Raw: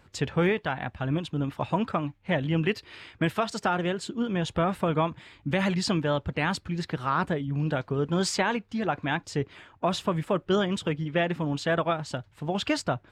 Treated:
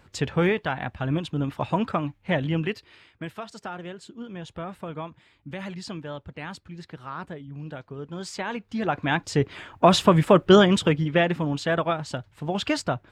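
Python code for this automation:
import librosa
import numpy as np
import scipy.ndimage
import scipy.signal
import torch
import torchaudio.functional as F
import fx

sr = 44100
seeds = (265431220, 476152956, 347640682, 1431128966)

y = fx.gain(x, sr, db=fx.line((2.45, 2.0), (3.11, -9.5), (8.25, -9.5), (8.74, 1.0), (9.85, 10.0), (10.56, 10.0), (11.59, 1.5)))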